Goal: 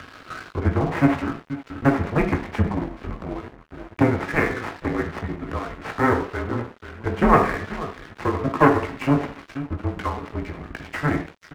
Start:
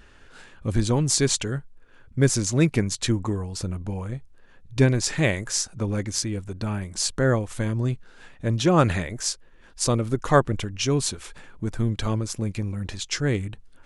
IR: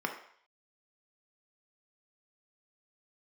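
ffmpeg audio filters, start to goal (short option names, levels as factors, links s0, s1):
-filter_complex "[0:a]atempo=1.2,bandreject=f=990:w=6.5,asplit=2[s0][s1];[s1]adelay=17,volume=0.596[s2];[s0][s2]amix=inputs=2:normalize=0,asplit=2[s3][s4];[s4]adelay=484,volume=0.2,highshelf=f=4000:g=-10.9[s5];[s3][s5]amix=inputs=2:normalize=0,aeval=exprs='0.708*(cos(1*acos(clip(val(0)/0.708,-1,1)))-cos(1*PI/2))+0.0141*(cos(5*acos(clip(val(0)/0.708,-1,1)))-cos(5*PI/2))+0.178*(cos(6*acos(clip(val(0)/0.708,-1,1)))-cos(6*PI/2))':c=same,acrossover=split=110|860[s6][s7][s8];[s6]aeval=exprs='sgn(val(0))*max(abs(val(0))-0.00158,0)':c=same[s9];[s9][s7][s8]amix=inputs=3:normalize=0,acompressor=mode=upward:threshold=0.0562:ratio=2.5[s10];[1:a]atrim=start_sample=2205[s11];[s10][s11]afir=irnorm=-1:irlink=0,highpass=f=220:t=q:w=0.5412,highpass=f=220:t=q:w=1.307,lowpass=f=2700:t=q:w=0.5176,lowpass=f=2700:t=q:w=0.7071,lowpass=f=2700:t=q:w=1.932,afreqshift=-140,asplit=2[s12][s13];[s13]acompressor=threshold=0.0501:ratio=6,volume=0.75[s14];[s12][s14]amix=inputs=2:normalize=0,aeval=exprs='sgn(val(0))*max(abs(val(0))-0.0251,0)':c=same,volume=0.596"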